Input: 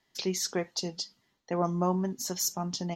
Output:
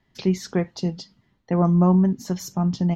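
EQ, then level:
bass and treble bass +13 dB, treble −13 dB
+4.0 dB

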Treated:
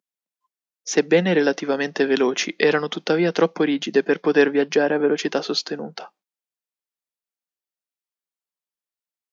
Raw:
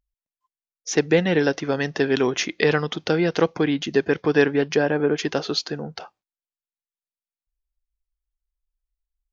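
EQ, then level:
Chebyshev high-pass filter 180 Hz, order 4
+2.0 dB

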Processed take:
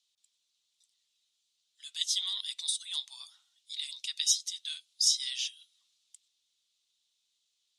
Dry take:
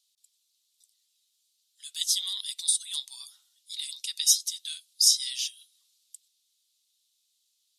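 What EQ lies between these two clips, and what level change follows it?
high-frequency loss of the air 93 metres
parametric band 4,700 Hz −4 dB 0.52 octaves
+2.5 dB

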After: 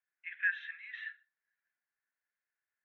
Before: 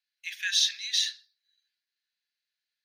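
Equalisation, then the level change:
high-pass filter 1,300 Hz 6 dB per octave
inverse Chebyshev low-pass filter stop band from 4,400 Hz, stop band 50 dB
high-frequency loss of the air 210 metres
+8.5 dB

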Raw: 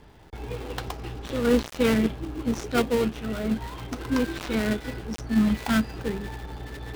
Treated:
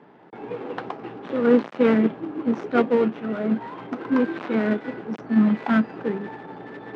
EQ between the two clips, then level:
high-pass filter 180 Hz 24 dB per octave
low-pass filter 1,700 Hz 12 dB per octave
+4.5 dB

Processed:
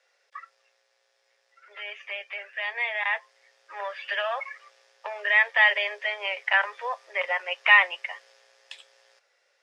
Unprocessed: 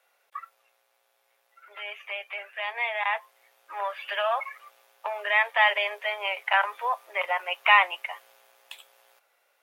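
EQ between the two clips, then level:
loudspeaker in its box 290–7,300 Hz, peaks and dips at 530 Hz +6 dB, 1,800 Hz +9 dB, 5,100 Hz +8 dB
parametric band 400 Hz +7.5 dB 0.75 octaves
high-shelf EQ 2,600 Hz +10.5 dB
−7.0 dB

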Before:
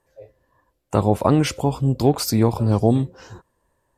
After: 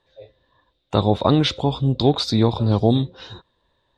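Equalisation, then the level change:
dynamic equaliser 2,700 Hz, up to −6 dB, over −45 dBFS, Q 1.2
low-pass with resonance 3,700 Hz, resonance Q 15
0.0 dB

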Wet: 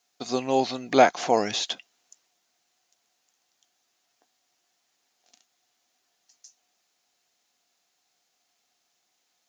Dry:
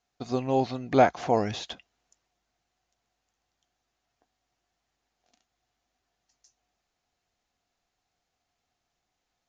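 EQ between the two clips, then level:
high-pass filter 220 Hz 12 dB per octave
high-shelf EQ 3,000 Hz +12 dB
+2.0 dB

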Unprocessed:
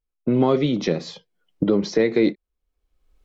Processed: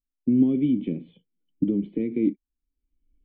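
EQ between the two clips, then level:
formant resonators in series i
spectral tilt −1.5 dB per octave
0.0 dB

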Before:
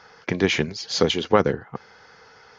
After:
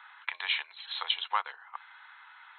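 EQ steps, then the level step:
dynamic equaliser 1,700 Hz, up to −8 dB, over −38 dBFS, Q 0.93
elliptic high-pass filter 940 Hz, stop band 80 dB
linear-phase brick-wall low-pass 4,200 Hz
0.0 dB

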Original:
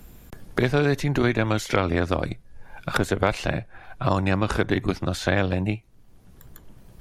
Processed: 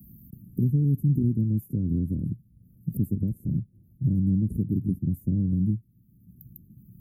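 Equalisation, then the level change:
high-pass filter 120 Hz 12 dB per octave
inverse Chebyshev band-stop filter 840–4,900 Hz, stop band 70 dB
+5.5 dB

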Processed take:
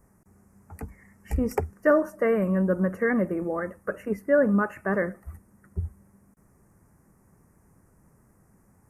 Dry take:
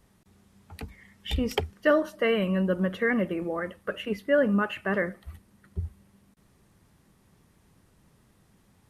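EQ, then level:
Butterworth band-reject 3,500 Hz, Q 0.7
+2.0 dB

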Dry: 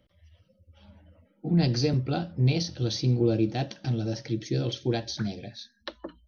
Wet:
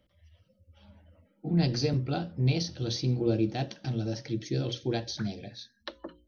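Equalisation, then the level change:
mains-hum notches 60/120/180/240/300/360/420/480/540 Hz
−2.0 dB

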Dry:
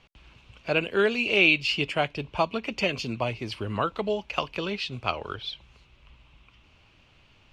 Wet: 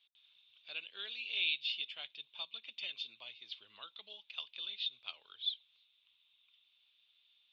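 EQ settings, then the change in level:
resonant band-pass 3,600 Hz, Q 19
high-frequency loss of the air 78 metres
+7.5 dB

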